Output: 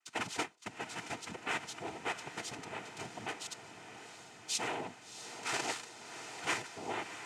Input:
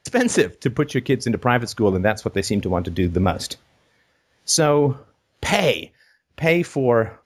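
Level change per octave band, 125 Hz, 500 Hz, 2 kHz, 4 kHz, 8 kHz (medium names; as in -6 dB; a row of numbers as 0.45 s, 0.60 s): -30.0 dB, -25.5 dB, -14.0 dB, -13.0 dB, -14.5 dB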